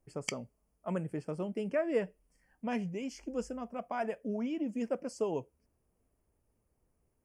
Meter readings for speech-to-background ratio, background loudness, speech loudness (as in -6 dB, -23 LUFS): 4.5 dB, -41.5 LUFS, -37.0 LUFS